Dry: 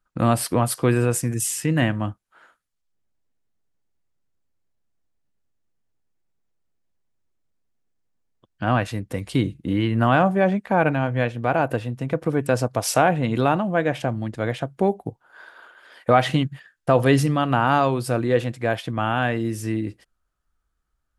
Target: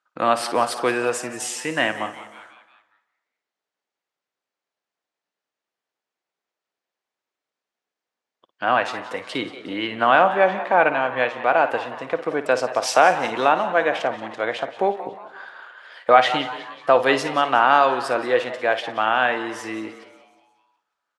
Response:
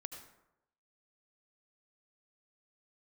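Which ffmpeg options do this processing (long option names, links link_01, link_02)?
-filter_complex "[0:a]highpass=550,lowpass=5200,asplit=6[link_01][link_02][link_03][link_04][link_05][link_06];[link_02]adelay=181,afreqshift=130,volume=-16dB[link_07];[link_03]adelay=362,afreqshift=260,volume=-21.7dB[link_08];[link_04]adelay=543,afreqshift=390,volume=-27.4dB[link_09];[link_05]adelay=724,afreqshift=520,volume=-33dB[link_10];[link_06]adelay=905,afreqshift=650,volume=-38.7dB[link_11];[link_01][link_07][link_08][link_09][link_10][link_11]amix=inputs=6:normalize=0,asplit=2[link_12][link_13];[1:a]atrim=start_sample=2205,asetrate=32634,aresample=44100,adelay=55[link_14];[link_13][link_14]afir=irnorm=-1:irlink=0,volume=-10dB[link_15];[link_12][link_15]amix=inputs=2:normalize=0,volume=5dB"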